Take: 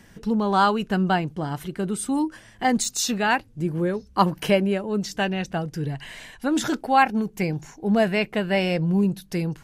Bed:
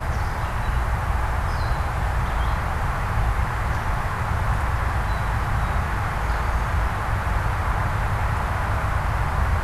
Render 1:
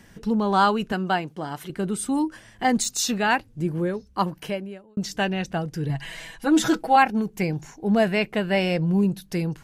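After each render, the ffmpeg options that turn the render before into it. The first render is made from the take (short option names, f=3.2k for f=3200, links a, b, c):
-filter_complex "[0:a]asettb=1/sr,asplit=3[a][b][c];[a]atrim=end=0.924[d];[b]atrim=start=0.92:end=1.7,asetpts=PTS-STARTPTS,afade=t=in:d=0.004:c=qsin,afade=t=out:st=0.776:d=0.004:c=qsin,highpass=f=330:p=1[e];[c]atrim=start=1.696[f];[d][e]acrossfade=d=0.004:c1=hsin:c2=qsin[g];[g][f]acrossfade=d=0.004:c1=qsin:c2=hsin,asettb=1/sr,asplit=3[h][i][j];[h]atrim=end=5.894[k];[i]atrim=start=5.89:end=6.96,asetpts=PTS-STARTPTS,afade=t=in:d=0.004:c=qsin,afade=t=out:st=1.066:d=0.004:c=qsin,aecho=1:1:6.1:0.86,atrim=end_sample=47187[l];[j]atrim=start=6.956[m];[k][l]acrossfade=d=0.004:c1=hsin:c2=qsin[n];[n][m]acrossfade=d=0.004:c1=qsin:c2=hsin,asplit=2[o][p];[o]atrim=end=4.97,asetpts=PTS-STARTPTS,afade=t=out:st=3.67:d=1.3[q];[p]atrim=start=4.97,asetpts=PTS-STARTPTS,afade=t=in:d=0.004:c=hsin[r];[q][r]concat=n=2:v=0:a=1"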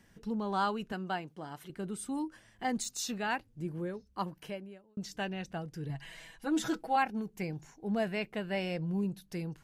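-af "volume=-12dB"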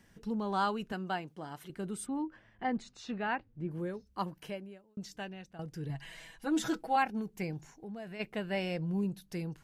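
-filter_complex "[0:a]asplit=3[a][b][c];[a]afade=t=out:st=2.05:d=0.02[d];[b]lowpass=2.4k,afade=t=in:st=2.05:d=0.02,afade=t=out:st=3.7:d=0.02[e];[c]afade=t=in:st=3.7:d=0.02[f];[d][e][f]amix=inputs=3:normalize=0,asplit=3[g][h][i];[g]afade=t=out:st=7.72:d=0.02[j];[h]acompressor=threshold=-42dB:ratio=4:attack=3.2:release=140:knee=1:detection=peak,afade=t=in:st=7.72:d=0.02,afade=t=out:st=8.19:d=0.02[k];[i]afade=t=in:st=8.19:d=0.02[l];[j][k][l]amix=inputs=3:normalize=0,asplit=2[m][n];[m]atrim=end=5.59,asetpts=PTS-STARTPTS,afade=t=out:st=4.69:d=0.9:silence=0.211349[o];[n]atrim=start=5.59,asetpts=PTS-STARTPTS,afade=t=in:d=0.004:c=hsin:silence=0.211349[p];[o][p]concat=n=2:v=0:a=1"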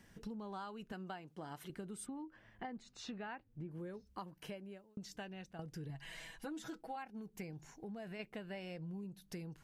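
-af "acompressor=threshold=-43dB:ratio=10"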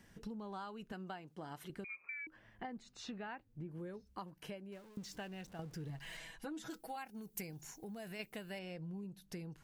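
-filter_complex "[0:a]asettb=1/sr,asplit=3[a][b][c];[a]atrim=end=1.844[d];[b]atrim=start=1.84:end=2.27,asetpts=PTS-STARTPTS,afade=t=in:d=0.004:c=qsin,afade=t=out:st=0.426:d=0.004:c=qsin,lowpass=f=2.2k:t=q:w=0.5098,lowpass=f=2.2k:t=q:w=0.6013,lowpass=f=2.2k:t=q:w=0.9,lowpass=f=2.2k:t=q:w=2.563,afreqshift=-2600[e];[c]atrim=start=2.266[f];[d][e]acrossfade=d=0.004:c1=hsin:c2=qsin[g];[g][f]acrossfade=d=0.004:c1=qsin:c2=hsin,asettb=1/sr,asplit=3[h][i][j];[h]atrim=end=4.724[k];[i]atrim=start=4.72:end=6.17,asetpts=PTS-STARTPTS,afade=t=in:d=0.004:c=qsin,afade=t=out:st=1.446:d=0.004:c=qsin,aeval=exprs='val(0)+0.5*0.0015*sgn(val(0))':c=same[l];[j]atrim=start=6.166[m];[k][l]acrossfade=d=0.004:c1=hsin:c2=qsin[n];[n][m]acrossfade=d=0.004:c1=qsin:c2=hsin,asettb=1/sr,asplit=3[o][p][q];[o]atrim=end=6.704[r];[p]atrim=start=6.7:end=8.59,asetpts=PTS-STARTPTS,afade=t=in:d=0.004:c=qsin,afade=t=out:st=1.886:d=0.004:c=qsin,aemphasis=mode=production:type=75fm[s];[q]atrim=start=8.586[t];[r][s]acrossfade=d=0.004:c1=hsin:c2=qsin[u];[u][t]acrossfade=d=0.004:c1=qsin:c2=hsin"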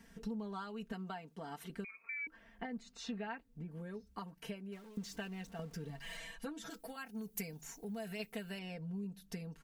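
-af "aecho=1:1:4.4:0.83"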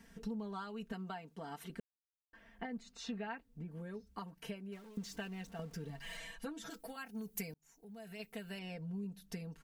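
-filter_complex "[0:a]asplit=4[a][b][c][d];[a]atrim=end=1.8,asetpts=PTS-STARTPTS,afade=t=out:st=1.796:d=0.004:c=hsin[e];[b]atrim=start=1.8:end=2.33,asetpts=PTS-STARTPTS,volume=0[f];[c]atrim=start=2.33:end=7.54,asetpts=PTS-STARTPTS,afade=t=in:d=0.004:c=hsin,afade=t=out:st=5.206:d=0.004:c=hsin[g];[d]atrim=start=7.54,asetpts=PTS-STARTPTS,afade=t=in:d=1.12[h];[e][f][g][h]concat=n=4:v=0:a=1"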